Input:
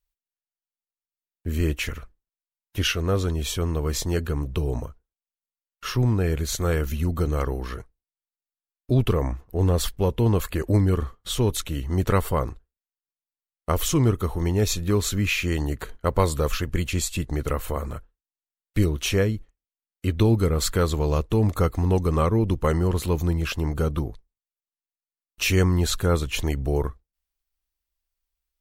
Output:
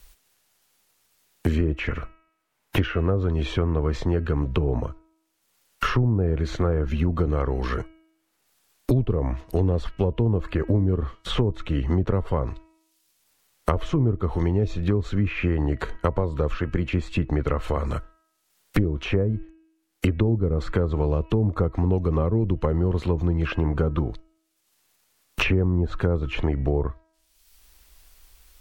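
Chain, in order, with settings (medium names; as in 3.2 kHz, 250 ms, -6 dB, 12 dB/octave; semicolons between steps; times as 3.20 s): de-hum 321.5 Hz, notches 9; low-pass that closes with the level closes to 670 Hz, closed at -17 dBFS; three bands compressed up and down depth 100%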